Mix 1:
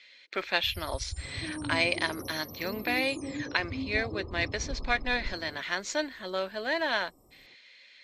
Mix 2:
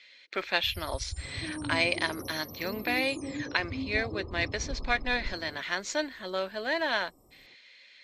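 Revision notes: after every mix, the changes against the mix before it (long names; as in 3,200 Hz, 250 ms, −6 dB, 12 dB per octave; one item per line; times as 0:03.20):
nothing changed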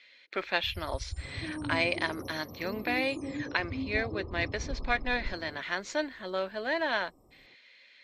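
master: add high-shelf EQ 4,800 Hz −10.5 dB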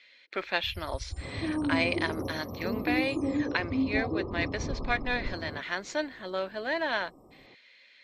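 second sound +8.0 dB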